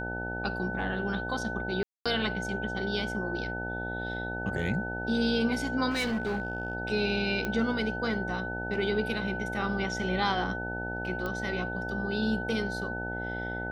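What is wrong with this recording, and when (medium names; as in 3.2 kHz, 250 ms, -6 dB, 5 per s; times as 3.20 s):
buzz 60 Hz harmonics 15 -37 dBFS
whine 1.5 kHz -35 dBFS
1.83–2.06 s: dropout 226 ms
5.90–6.75 s: clipped -26.5 dBFS
7.45 s: pop -17 dBFS
11.26 s: pop -21 dBFS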